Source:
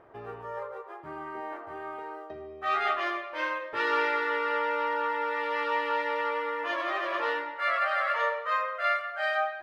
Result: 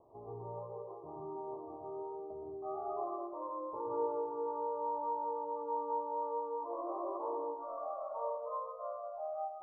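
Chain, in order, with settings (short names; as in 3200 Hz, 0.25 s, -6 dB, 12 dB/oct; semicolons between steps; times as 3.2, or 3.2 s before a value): steep low-pass 1100 Hz 96 dB/oct; on a send: reverb RT60 1.0 s, pre-delay 0.12 s, DRR 4 dB; on the sum: gain -7.5 dB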